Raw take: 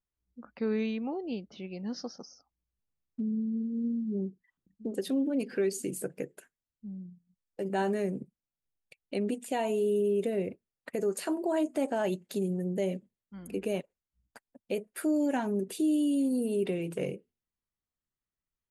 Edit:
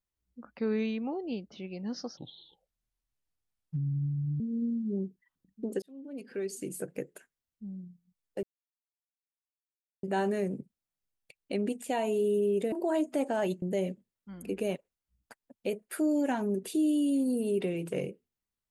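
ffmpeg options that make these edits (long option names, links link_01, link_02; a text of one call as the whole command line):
ffmpeg -i in.wav -filter_complex "[0:a]asplit=7[link_01][link_02][link_03][link_04][link_05][link_06][link_07];[link_01]atrim=end=2.174[link_08];[link_02]atrim=start=2.17:end=3.62,asetpts=PTS-STARTPTS,asetrate=28665,aresample=44100[link_09];[link_03]atrim=start=3.616:end=5.04,asetpts=PTS-STARTPTS,afade=type=out:start_time=1.42:duration=0.004:curve=hsin[link_10];[link_04]atrim=start=5.04:end=7.65,asetpts=PTS-STARTPTS,afade=type=in:duration=1.21,afade=type=out:start_time=2.606:duration=0.004:curve=hsin,apad=pad_dur=1.6[link_11];[link_05]atrim=start=7.65:end=10.342,asetpts=PTS-STARTPTS,afade=type=in:duration=0.004:curve=hsin[link_12];[link_06]atrim=start=11.338:end=12.242[link_13];[link_07]atrim=start=12.668[link_14];[link_08][link_09]acrossfade=duration=0.004:curve1=hsin:curve2=hsin[link_15];[link_10][link_11][link_12]concat=n=3:v=0:a=1[link_16];[link_15][link_16]acrossfade=duration=0.004:curve1=hsin:curve2=hsin[link_17];[link_17][link_13]acrossfade=duration=0.004:curve1=hsin:curve2=hsin[link_18];[link_18][link_14]acrossfade=duration=0.004:curve1=hsin:curve2=hsin" out.wav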